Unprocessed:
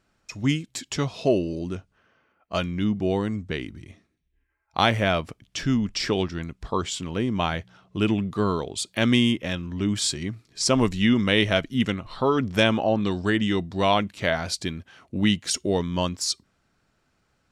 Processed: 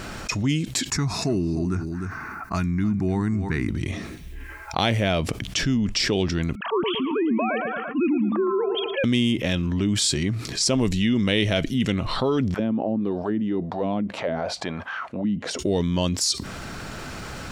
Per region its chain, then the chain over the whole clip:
0:00.90–0:03.69: phaser with its sweep stopped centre 1,300 Hz, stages 4 + single-tap delay 302 ms −16.5 dB
0:06.55–0:09.04: three sine waves on the formant tracks + delay with a low-pass on its return 113 ms, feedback 33%, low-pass 2,200 Hz, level −10 dB
0:12.54–0:15.59: envelope filter 260–1,600 Hz, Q 2.6, down, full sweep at −18 dBFS + parametric band 350 Hz −7.5 dB 0.8 octaves
whole clip: dynamic equaliser 1,200 Hz, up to −8 dB, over −40 dBFS, Q 1.1; envelope flattener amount 70%; level −2.5 dB

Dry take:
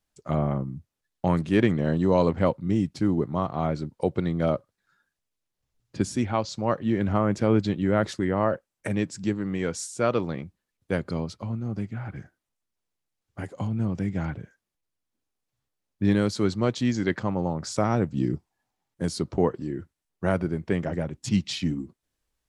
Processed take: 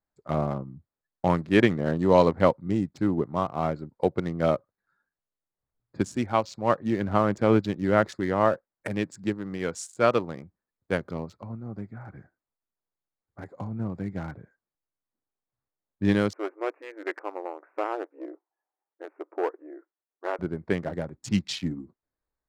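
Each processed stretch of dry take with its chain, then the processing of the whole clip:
0:16.33–0:20.39: tube saturation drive 17 dB, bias 0.6 + linear-phase brick-wall band-pass 290–2,900 Hz
whole clip: adaptive Wiener filter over 15 samples; low-shelf EQ 370 Hz −7.5 dB; expander for the loud parts 1.5 to 1, over −37 dBFS; level +6.5 dB

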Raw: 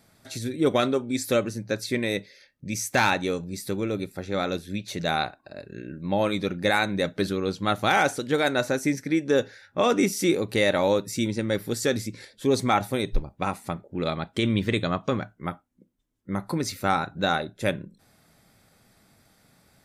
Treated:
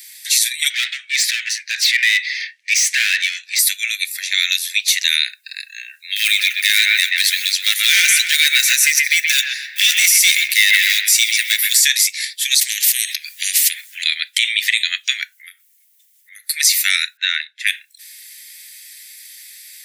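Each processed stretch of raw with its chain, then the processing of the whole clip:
0:00.70–0:03.59: downward compressor, threshold −26 dBFS + high-frequency loss of the air 74 metres + mid-hump overdrive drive 23 dB, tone 1,100 Hz, clips at −17.5 dBFS
0:06.16–0:11.85: one scale factor per block 7 bits + gain into a clipping stage and back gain 17 dB + delay with a band-pass on its return 126 ms, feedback 33%, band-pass 1,500 Hz, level −4 dB
0:12.61–0:14.04: downward compressor 16 to 1, threshold −33 dBFS + every bin compressed towards the loudest bin 10 to 1
0:15.32–0:16.49: high-shelf EQ 9,200 Hz +8.5 dB + downward compressor 4 to 1, threshold −44 dBFS
0:17.17–0:17.67: low-pass filter 1,400 Hz + spectral tilt +3.5 dB per octave
whole clip: Butterworth high-pass 1,800 Hz 72 dB per octave; high-shelf EQ 8,300 Hz +10 dB; boost into a limiter +23 dB; level −1 dB

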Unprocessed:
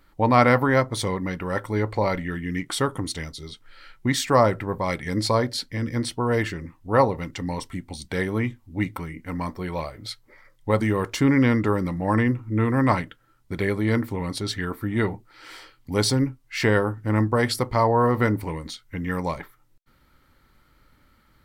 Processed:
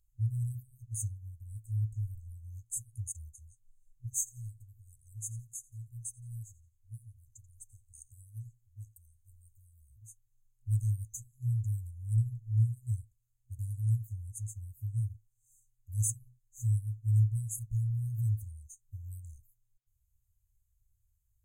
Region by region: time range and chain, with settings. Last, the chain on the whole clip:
0:04.13–0:09.91: parametric band 85 Hz −10.5 dB 1.2 octaves + repeating echo 86 ms, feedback 29%, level −17.5 dB
whole clip: brick-wall band-stop 120–6,200 Hz; parametric band 4,200 Hz +11.5 dB 1 octave; expander for the loud parts 1.5 to 1, over −46 dBFS

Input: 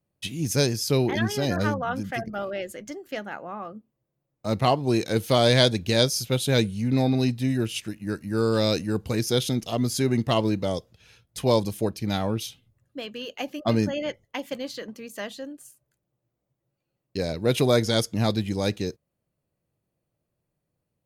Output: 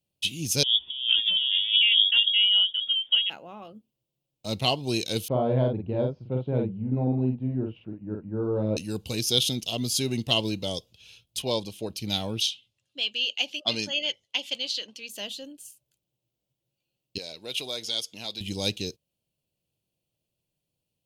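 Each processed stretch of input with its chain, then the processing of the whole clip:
0:00.63–0:03.30: high-shelf EQ 2,100 Hz −12 dB + compressor whose output falls as the input rises −29 dBFS, ratio −0.5 + voice inversion scrambler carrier 3,500 Hz
0:05.28–0:08.77: low-pass filter 1,200 Hz 24 dB per octave + double-tracking delay 47 ms −3 dB
0:11.42–0:11.90: low-pass filter 2,700 Hz 6 dB per octave + low-shelf EQ 200 Hz −7.5 dB
0:12.41–0:15.09: low-pass filter 4,600 Hz + spectral tilt +3.5 dB per octave
0:17.18–0:18.41: high-pass filter 940 Hz 6 dB per octave + high-shelf EQ 5,500 Hz −7 dB + downward compressor 1.5 to 1, threshold −36 dBFS
whole clip: high shelf with overshoot 2,300 Hz +8 dB, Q 3; notch filter 1,200 Hz, Q 12; level −5.5 dB

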